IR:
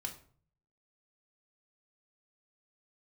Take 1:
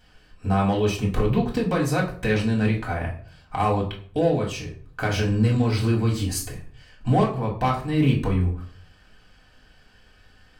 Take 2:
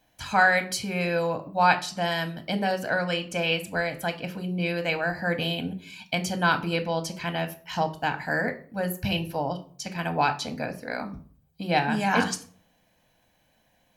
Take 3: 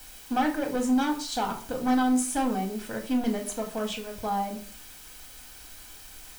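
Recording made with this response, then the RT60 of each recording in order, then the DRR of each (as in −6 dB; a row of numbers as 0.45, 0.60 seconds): 3; 0.50, 0.50, 0.50 seconds; −2.5, 7.0, 1.5 decibels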